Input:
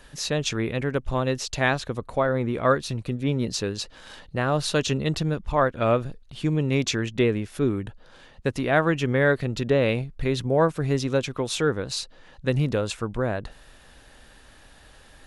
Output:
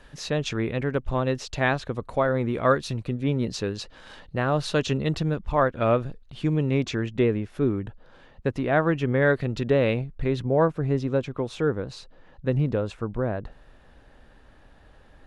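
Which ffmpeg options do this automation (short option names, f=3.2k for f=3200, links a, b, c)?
-af "asetnsamples=n=441:p=0,asendcmd='2 lowpass f 6500;3.02 lowpass f 3200;6.71 lowpass f 1600;9.22 lowpass f 3200;9.94 lowpass f 1700;10.68 lowpass f 1000',lowpass=f=2.8k:p=1"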